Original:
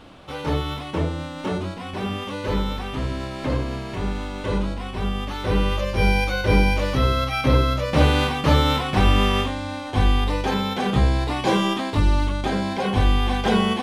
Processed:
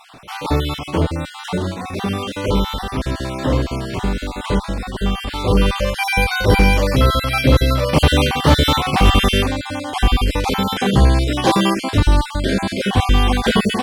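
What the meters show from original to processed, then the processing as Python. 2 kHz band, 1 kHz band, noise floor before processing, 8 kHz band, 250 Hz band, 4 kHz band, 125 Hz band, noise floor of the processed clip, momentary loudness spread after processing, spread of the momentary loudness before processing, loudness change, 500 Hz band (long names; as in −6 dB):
+5.5 dB, +4.5 dB, −33 dBFS, +9.5 dB, +4.5 dB, +6.5 dB, +4.5 dB, −33 dBFS, 10 LU, 10 LU, +5.0 dB, +4.5 dB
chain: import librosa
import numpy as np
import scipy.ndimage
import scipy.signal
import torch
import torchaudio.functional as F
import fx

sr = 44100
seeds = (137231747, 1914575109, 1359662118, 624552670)

y = fx.spec_dropout(x, sr, seeds[0], share_pct=29)
y = fx.high_shelf(y, sr, hz=7800.0, db=9.5)
y = fx.clip_asym(y, sr, top_db=-12.5, bottom_db=-8.5)
y = y * 10.0 ** (6.5 / 20.0)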